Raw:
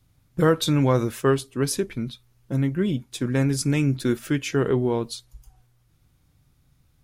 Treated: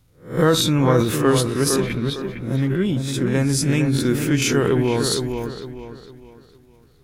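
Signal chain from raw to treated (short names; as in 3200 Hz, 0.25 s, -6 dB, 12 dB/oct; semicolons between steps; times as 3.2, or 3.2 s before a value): spectral swells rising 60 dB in 0.36 s; 4.42–5.15 high shelf 3200 Hz +9.5 dB; transient shaper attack +1 dB, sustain +8 dB; dark delay 0.457 s, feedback 35%, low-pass 2300 Hz, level -6 dB; gain +1.5 dB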